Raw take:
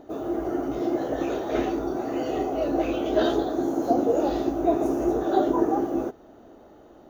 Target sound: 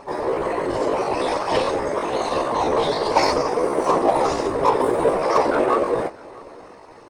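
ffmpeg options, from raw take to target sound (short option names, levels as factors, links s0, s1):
-filter_complex "[0:a]lowpass=4000,asplit=2[s0][s1];[s1]asoftclip=type=tanh:threshold=0.0531,volume=0.668[s2];[s0][s2]amix=inputs=2:normalize=0,afftfilt=real='hypot(re,im)*cos(2*PI*random(0))':imag='hypot(re,im)*sin(2*PI*random(1))':win_size=512:overlap=0.75,crystalizer=i=4.5:c=0,asetrate=62367,aresample=44100,atempo=0.707107,asplit=2[s3][s4];[s4]aecho=0:1:648:0.0668[s5];[s3][s5]amix=inputs=2:normalize=0,volume=2.37"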